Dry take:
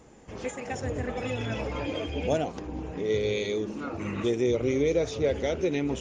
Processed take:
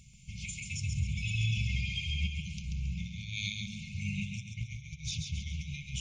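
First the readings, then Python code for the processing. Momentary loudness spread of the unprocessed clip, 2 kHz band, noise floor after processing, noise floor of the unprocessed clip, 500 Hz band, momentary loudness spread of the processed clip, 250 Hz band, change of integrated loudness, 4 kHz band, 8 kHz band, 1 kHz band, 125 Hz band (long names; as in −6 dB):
9 LU, −1.5 dB, −52 dBFS, −43 dBFS, below −40 dB, 9 LU, −12.0 dB, −6.5 dB, +1.0 dB, +1.5 dB, below −40 dB, +2.0 dB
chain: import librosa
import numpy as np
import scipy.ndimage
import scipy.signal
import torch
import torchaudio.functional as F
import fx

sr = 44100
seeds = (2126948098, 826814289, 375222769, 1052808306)

y = fx.over_compress(x, sr, threshold_db=-30.0, ratio=-0.5)
y = fx.brickwall_bandstop(y, sr, low_hz=200.0, high_hz=2100.0)
y = fx.echo_feedback(y, sr, ms=136, feedback_pct=37, wet_db=-5.0)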